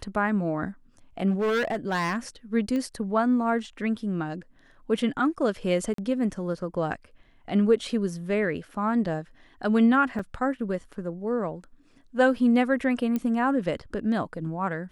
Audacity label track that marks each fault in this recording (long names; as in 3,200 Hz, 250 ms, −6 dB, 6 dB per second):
1.300000	2.170000	clipping −22 dBFS
2.760000	2.760000	click −20 dBFS
5.940000	5.980000	drop-out 43 ms
10.190000	10.190000	drop-out 3.9 ms
13.160000	13.160000	click −16 dBFS